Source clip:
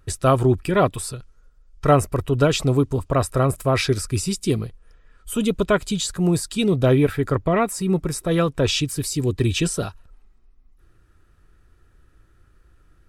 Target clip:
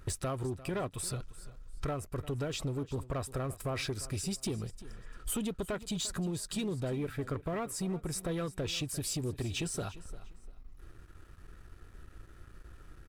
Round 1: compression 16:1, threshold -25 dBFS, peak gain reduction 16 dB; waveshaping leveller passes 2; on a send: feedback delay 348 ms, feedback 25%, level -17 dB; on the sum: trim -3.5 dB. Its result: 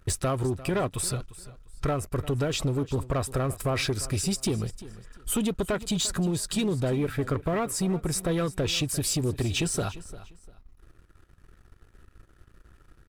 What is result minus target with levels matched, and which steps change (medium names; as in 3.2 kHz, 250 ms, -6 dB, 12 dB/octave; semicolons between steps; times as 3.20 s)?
compression: peak gain reduction -8.5 dB
change: compression 16:1, threshold -34 dBFS, peak gain reduction 24.5 dB